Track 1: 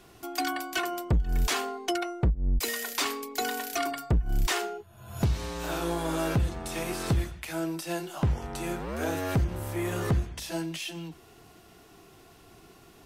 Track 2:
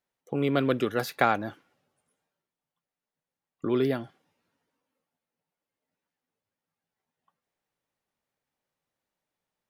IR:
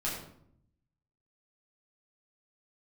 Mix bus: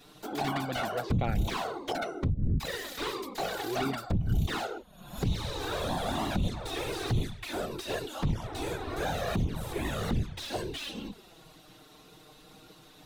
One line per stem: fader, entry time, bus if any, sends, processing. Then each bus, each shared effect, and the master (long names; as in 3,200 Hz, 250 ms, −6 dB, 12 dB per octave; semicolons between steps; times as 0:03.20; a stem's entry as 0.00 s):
+2.0 dB, 0.00 s, no send, random phases in short frames; parametric band 3,800 Hz +11 dB 0.33 octaves; slew-rate limiting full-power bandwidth 56 Hz
−5.0 dB, 0.00 s, no send, low-pass filter 4,500 Hz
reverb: not used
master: flanger swept by the level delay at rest 7.3 ms, full sweep at −18.5 dBFS; brickwall limiter −19.5 dBFS, peak gain reduction 9 dB